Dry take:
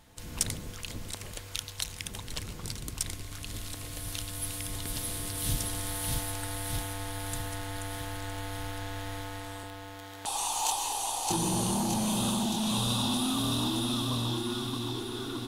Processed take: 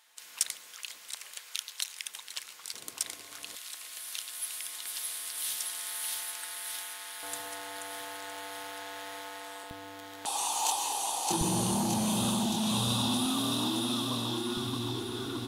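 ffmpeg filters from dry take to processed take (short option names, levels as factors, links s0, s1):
-af "asetnsamples=n=441:p=0,asendcmd='2.74 highpass f 500;3.55 highpass f 1300;7.23 highpass f 500;9.71 highpass f 190;11.41 highpass f 75;13.25 highpass f 170;14.57 highpass f 45',highpass=1300"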